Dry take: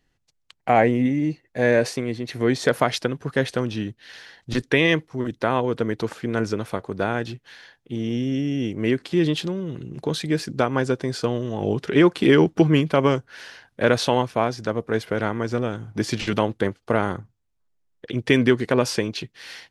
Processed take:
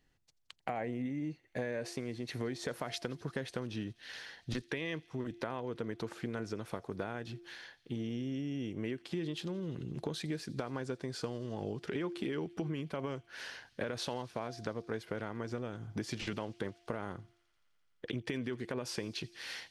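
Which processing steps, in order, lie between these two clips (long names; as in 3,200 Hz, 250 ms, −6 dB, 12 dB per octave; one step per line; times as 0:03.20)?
hum removal 346.5 Hz, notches 2
brickwall limiter −9.5 dBFS, peak gain reduction 7 dB
downward compressor 6 to 1, threshold −31 dBFS, peak gain reduction 16 dB
delay with a high-pass on its return 85 ms, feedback 84%, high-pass 3,000 Hz, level −22 dB
level −4 dB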